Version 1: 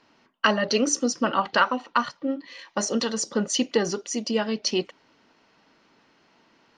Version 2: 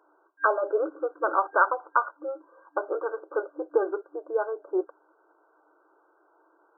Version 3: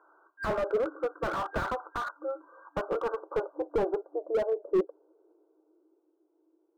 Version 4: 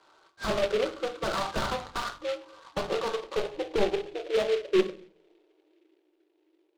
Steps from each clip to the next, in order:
brick-wall band-pass 300–1,600 Hz
low-pass filter sweep 1,500 Hz → 270 Hz, 0:02.50–0:06.12; mains-hum notches 50/100/150/200/250/300 Hz; slew-rate limiting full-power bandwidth 43 Hz; level −2 dB
rectangular room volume 300 cubic metres, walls furnished, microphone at 1.1 metres; short delay modulated by noise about 2,400 Hz, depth 0.072 ms

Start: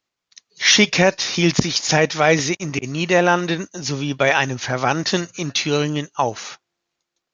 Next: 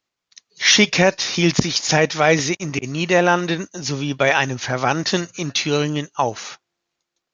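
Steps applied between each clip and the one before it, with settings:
no processing that can be heard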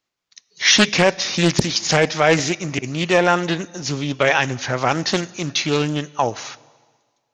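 dense smooth reverb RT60 1.6 s, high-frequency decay 1×, DRR 19.5 dB
highs frequency-modulated by the lows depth 0.8 ms

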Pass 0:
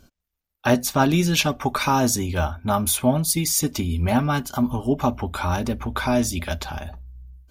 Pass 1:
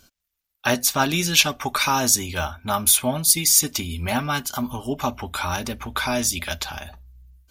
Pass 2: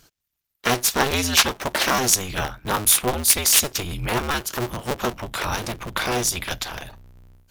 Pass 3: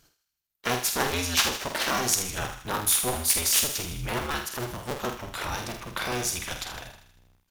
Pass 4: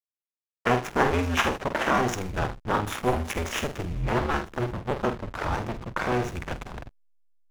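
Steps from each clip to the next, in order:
tilt shelving filter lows −6.5 dB, about 1,100 Hz
sub-harmonics by changed cycles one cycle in 2, inverted
double-tracking delay 48 ms −7 dB; on a send: feedback echo with a high-pass in the loop 79 ms, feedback 57%, high-pass 920 Hz, level −9 dB; on the sum: level −7 dB
moving average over 10 samples; slack as between gear wheels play −32.5 dBFS; level +6.5 dB

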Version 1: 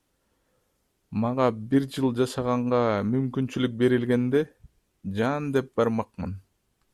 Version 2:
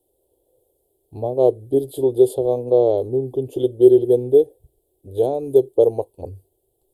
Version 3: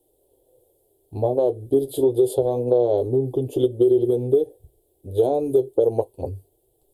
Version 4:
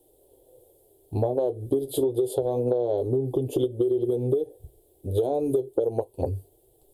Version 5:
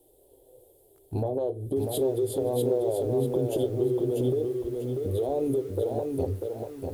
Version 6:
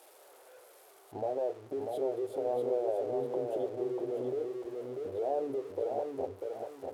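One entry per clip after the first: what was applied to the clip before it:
drawn EQ curve 130 Hz 0 dB, 200 Hz −20 dB, 370 Hz +14 dB, 770 Hz +5 dB, 1,300 Hz −30 dB, 2,100 Hz −29 dB, 3,400 Hz −3 dB, 5,900 Hz −13 dB, 8,500 Hz +5 dB, 12,000 Hz +11 dB; level −1 dB
brickwall limiter −9.5 dBFS, peak gain reduction 8.5 dB; downward compressor, threshold −18 dBFS, peak gain reduction 5.5 dB; flanger 0.3 Hz, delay 6.1 ms, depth 6.1 ms, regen −46%; level +7.5 dB
downward compressor 6 to 1, threshold −26 dBFS, peak gain reduction 12.5 dB; level +4.5 dB
brickwall limiter −20 dBFS, peak gain reduction 8.5 dB; on a send at −15 dB: convolution reverb RT60 0.40 s, pre-delay 3 ms; on the sum: feedback echo at a low word length 643 ms, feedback 35%, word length 9 bits, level −4 dB
spike at every zero crossing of −25 dBFS; resonant band-pass 730 Hz, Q 1.8

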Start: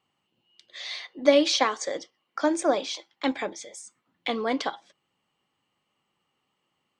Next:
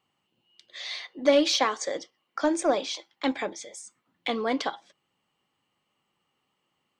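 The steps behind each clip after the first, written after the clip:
soft clipping −10.5 dBFS, distortion −19 dB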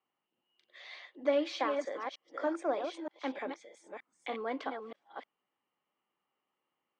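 delay that plays each chunk backwards 308 ms, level −6 dB
three-way crossover with the lows and the highs turned down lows −14 dB, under 240 Hz, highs −16 dB, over 2,700 Hz
level −8 dB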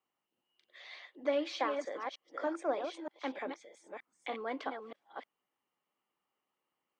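harmonic and percussive parts rebalanced harmonic −3 dB

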